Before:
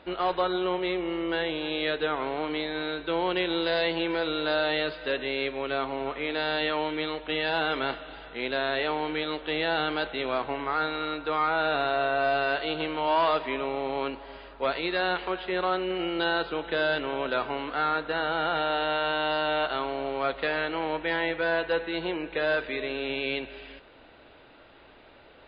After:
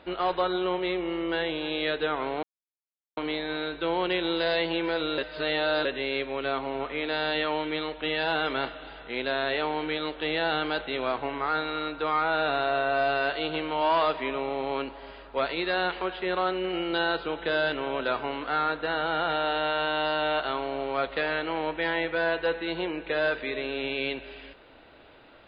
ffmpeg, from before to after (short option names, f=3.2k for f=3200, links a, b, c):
-filter_complex "[0:a]asplit=4[a][b][c][d];[a]atrim=end=2.43,asetpts=PTS-STARTPTS,afade=t=out:st=2.426:d=0.004:c=hsin,apad=pad_dur=0.74[e];[b]atrim=start=2.43:end=4.442,asetpts=PTS-STARTPTS,afade=t=in:d=0.004:c=hsin[f];[c]atrim=start=4.438:end=5.112,asetpts=PTS-STARTPTS,areverse[g];[d]atrim=start=5.108[h];[e][f]concat=n=2:v=0:a=1[i];[i][g]acrossfade=d=0.004:c1=hsin:c2=hsin[j];[j][h]acrossfade=d=0.004:c1=hsin:c2=hsin"